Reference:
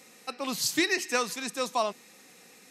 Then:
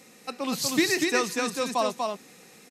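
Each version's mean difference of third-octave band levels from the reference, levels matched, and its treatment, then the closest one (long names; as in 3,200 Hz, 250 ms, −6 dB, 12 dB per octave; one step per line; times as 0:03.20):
4.5 dB: low-shelf EQ 400 Hz +7 dB
single-tap delay 242 ms −3.5 dB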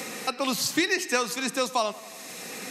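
6.5 dB: on a send: tape delay 91 ms, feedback 65%, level −19 dB
on the sum: multiband upward and downward compressor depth 70%
level +3 dB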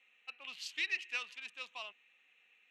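11.5 dB: adaptive Wiener filter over 9 samples
resonant band-pass 2,800 Hz, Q 5.1
level +1.5 dB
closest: first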